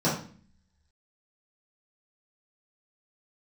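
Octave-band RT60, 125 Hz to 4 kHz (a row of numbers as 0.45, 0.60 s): 0.75, 0.80, 0.45, 0.40, 0.45, 0.40 s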